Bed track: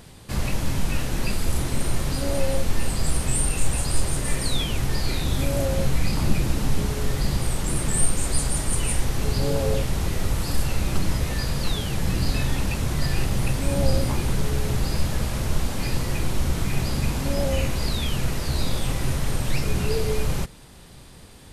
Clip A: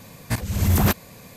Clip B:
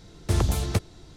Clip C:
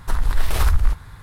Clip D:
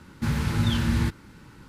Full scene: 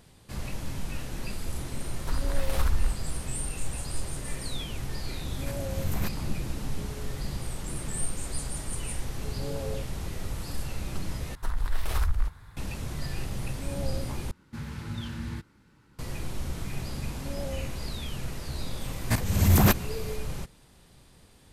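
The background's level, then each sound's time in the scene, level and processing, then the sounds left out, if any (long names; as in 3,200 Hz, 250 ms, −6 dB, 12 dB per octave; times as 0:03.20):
bed track −10 dB
0:01.99: mix in C −9 dB
0:05.16: mix in A −15 dB
0:11.35: overwrite with C −9 dB
0:14.31: overwrite with D −12 dB + downsampling to 32,000 Hz
0:18.80: mix in A −1 dB
not used: B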